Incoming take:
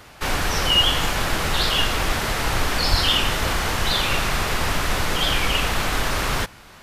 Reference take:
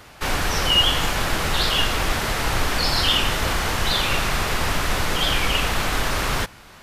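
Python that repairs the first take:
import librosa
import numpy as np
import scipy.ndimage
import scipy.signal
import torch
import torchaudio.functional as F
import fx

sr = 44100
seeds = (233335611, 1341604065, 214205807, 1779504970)

y = fx.fix_declip(x, sr, threshold_db=-7.5)
y = fx.fix_deplosive(y, sr, at_s=(2.9,))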